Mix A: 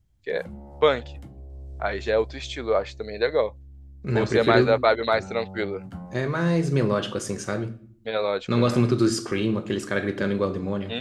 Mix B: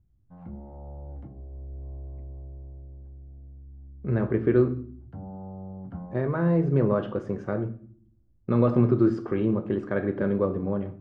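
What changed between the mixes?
first voice: muted
master: add low-pass filter 1,100 Hz 12 dB per octave

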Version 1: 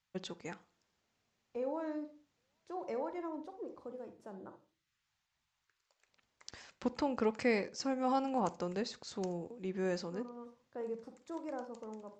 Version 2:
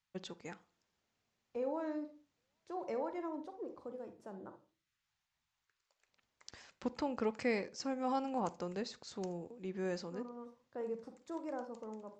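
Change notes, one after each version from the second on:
first voice −3.0 dB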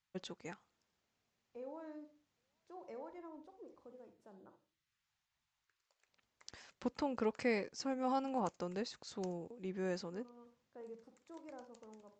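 first voice: send off
second voice −10.5 dB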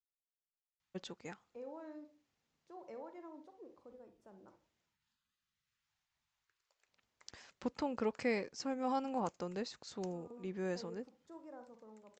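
first voice: entry +0.80 s

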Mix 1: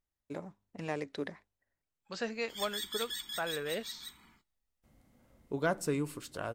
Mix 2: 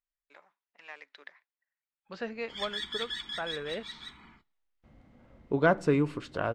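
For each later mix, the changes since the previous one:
first voice: add high-pass filter 1,500 Hz 12 dB per octave
background +7.5 dB
master: add low-pass filter 3,000 Hz 12 dB per octave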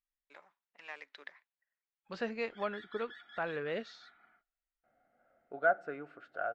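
background: add pair of resonant band-passes 1,000 Hz, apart 1 octave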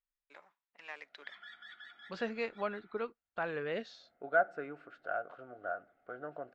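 background: entry −1.30 s

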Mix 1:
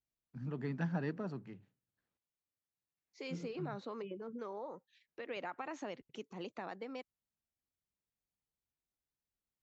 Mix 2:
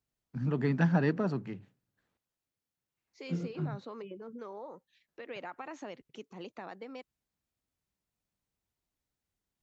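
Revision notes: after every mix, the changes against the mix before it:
first voice +10.0 dB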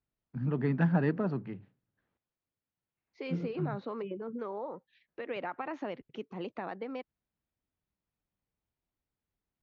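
second voice +6.5 dB
master: add high-frequency loss of the air 270 metres

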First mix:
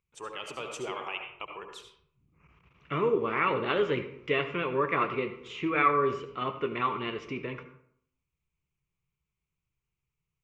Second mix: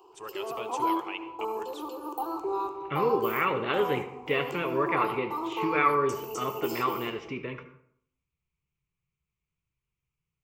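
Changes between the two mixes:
first voice: send −9.5 dB
background: unmuted

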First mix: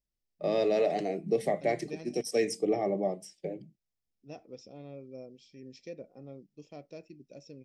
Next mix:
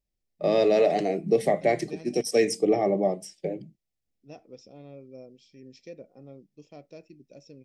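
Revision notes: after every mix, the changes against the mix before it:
first voice +6.0 dB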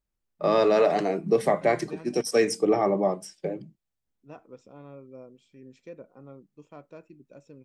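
second voice: remove low-pass with resonance 5,300 Hz, resonance Q 5.6
master: add flat-topped bell 1,200 Hz +12.5 dB 1 octave

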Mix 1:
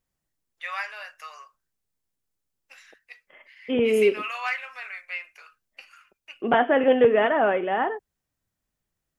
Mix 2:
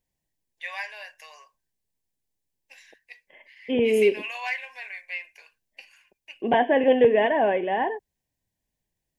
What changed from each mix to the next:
master: add Butterworth band-reject 1,300 Hz, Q 2.3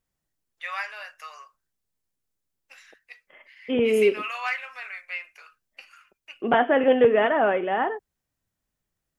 master: remove Butterworth band-reject 1,300 Hz, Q 2.3

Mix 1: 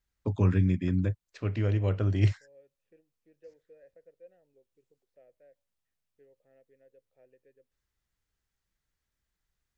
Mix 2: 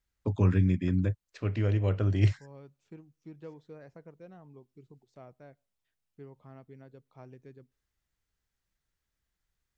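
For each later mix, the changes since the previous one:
second voice: remove formant filter e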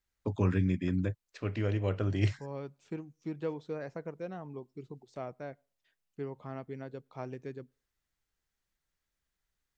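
second voice +11.0 dB
master: add parametric band 73 Hz −6 dB 2.6 octaves

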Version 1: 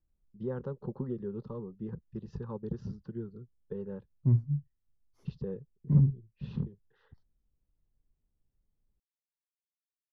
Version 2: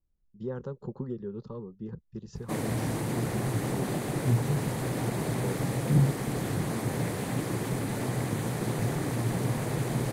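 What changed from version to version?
first voice: remove high-frequency loss of the air 250 metres
background: unmuted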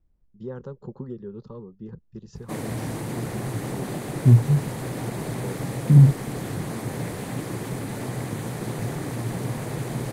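second voice +11.0 dB

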